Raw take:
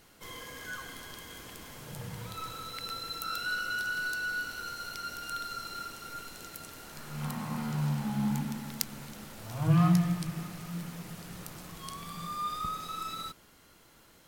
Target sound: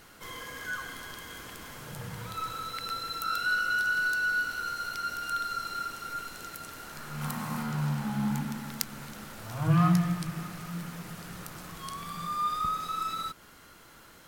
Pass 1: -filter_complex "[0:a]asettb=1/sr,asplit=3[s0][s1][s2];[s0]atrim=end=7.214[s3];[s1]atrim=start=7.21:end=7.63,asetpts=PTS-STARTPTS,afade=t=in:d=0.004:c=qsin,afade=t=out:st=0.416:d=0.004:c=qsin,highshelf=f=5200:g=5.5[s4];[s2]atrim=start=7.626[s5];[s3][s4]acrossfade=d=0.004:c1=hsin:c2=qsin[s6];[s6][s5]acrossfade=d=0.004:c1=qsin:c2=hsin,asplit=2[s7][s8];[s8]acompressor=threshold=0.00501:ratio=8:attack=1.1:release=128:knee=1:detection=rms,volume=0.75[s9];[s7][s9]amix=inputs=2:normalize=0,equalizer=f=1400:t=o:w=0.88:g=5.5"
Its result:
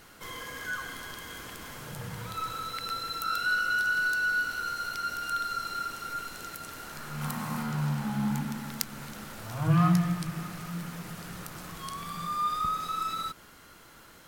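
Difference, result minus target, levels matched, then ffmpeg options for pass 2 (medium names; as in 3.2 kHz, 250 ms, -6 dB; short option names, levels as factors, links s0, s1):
compression: peak gain reduction -7 dB
-filter_complex "[0:a]asettb=1/sr,asplit=3[s0][s1][s2];[s0]atrim=end=7.214[s3];[s1]atrim=start=7.21:end=7.63,asetpts=PTS-STARTPTS,afade=t=in:d=0.004:c=qsin,afade=t=out:st=0.416:d=0.004:c=qsin,highshelf=f=5200:g=5.5[s4];[s2]atrim=start=7.626[s5];[s3][s4]acrossfade=d=0.004:c1=hsin:c2=qsin[s6];[s6][s5]acrossfade=d=0.004:c1=qsin:c2=hsin,asplit=2[s7][s8];[s8]acompressor=threshold=0.002:ratio=8:attack=1.1:release=128:knee=1:detection=rms,volume=0.75[s9];[s7][s9]amix=inputs=2:normalize=0,equalizer=f=1400:t=o:w=0.88:g=5.5"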